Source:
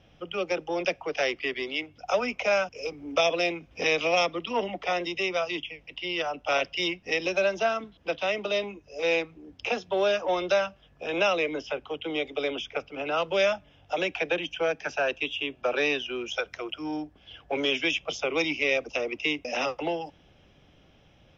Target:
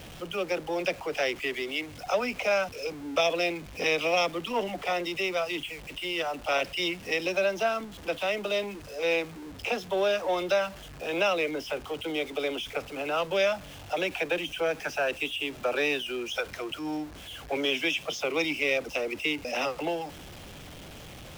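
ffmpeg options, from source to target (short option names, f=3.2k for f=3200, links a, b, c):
-filter_complex "[0:a]aeval=exprs='val(0)+0.5*0.0126*sgn(val(0))':c=same,asettb=1/sr,asplit=3[a][b][c];[a]atrim=end=17.574[d];[b]atrim=start=17.57:end=18.38,asetpts=PTS-STARTPTS,afade=t=in:d=0.004:c=qsin,afade=t=out:st=0.806:d=0.004:c=qsin,highpass=100[e];[c]atrim=start=18.376[f];[d][e]acrossfade=d=0.004:c1=hsin:c2=qsin[g];[g][f]acrossfade=d=0.004:c1=qsin:c2=hsin,volume=-2dB"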